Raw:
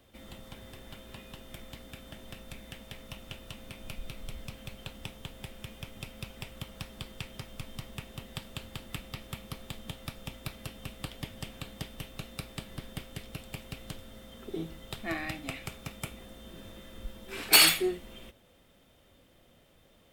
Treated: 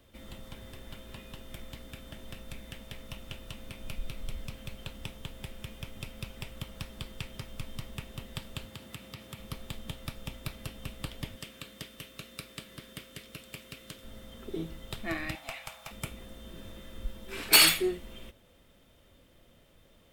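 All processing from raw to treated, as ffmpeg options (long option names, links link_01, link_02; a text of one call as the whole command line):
ffmpeg -i in.wav -filter_complex "[0:a]asettb=1/sr,asplit=3[link_01][link_02][link_03];[link_01]atrim=end=8.654[link_04];[link_02]atrim=start=8.65:end=9.39,asetpts=PTS-STARTPTS,afade=type=in:duration=0.004:curve=qsin,afade=type=out:start_time=0.736:duration=0.004:curve=qsin,highpass=frequency=79:width=0.5412,highpass=frequency=79:width=1.3066,acompressor=threshold=-42dB:ratio=2:attack=3.2:release=140:knee=1:detection=peak[link_05];[link_03]atrim=start=9.386[link_06];[link_04][link_05]acrossfade=duration=0.004:curve1=hsin:curve2=qsin[link_07];[link_07][link_06]acrossfade=duration=0.004:curve1=qsin:curve2=hsin,asettb=1/sr,asplit=3[link_08][link_09][link_10];[link_08]atrim=end=11.364[link_11];[link_09]atrim=start=11.36:end=14.03,asetpts=PTS-STARTPTS,afade=type=in:duration=0.004:curve=qsin,afade=type=out:start_time=2.666:duration=0.004:curve=qsin,highpass=frequency=320:poles=1,equalizer=frequency=810:width=2.7:gain=-9[link_12];[link_10]atrim=start=14.026[link_13];[link_11][link_12]acrossfade=duration=0.004:curve1=hsin:curve2=qsin[link_14];[link_14][link_13]acrossfade=duration=0.004:curve1=qsin:curve2=hsin,asettb=1/sr,asplit=3[link_15][link_16][link_17];[link_15]atrim=end=15.354[link_18];[link_16]atrim=start=15.35:end=15.91,asetpts=PTS-STARTPTS,afade=type=in:duration=0.004:curve=qsin,afade=type=out:start_time=0.556:duration=0.004:curve=qsin,highpass=frequency=100:poles=1,lowshelf=frequency=520:width_type=q:width=3:gain=-12.5,aeval=exprs='clip(val(0),-1,0.0141)':channel_layout=same[link_19];[link_17]atrim=start=15.906[link_20];[link_18][link_19]acrossfade=duration=0.004:curve1=hsin:curve2=qsin[link_21];[link_21][link_20]acrossfade=duration=0.004:curve1=qsin:curve2=hsin,lowshelf=frequency=62:gain=6,bandreject=frequency=760:width=12" out.wav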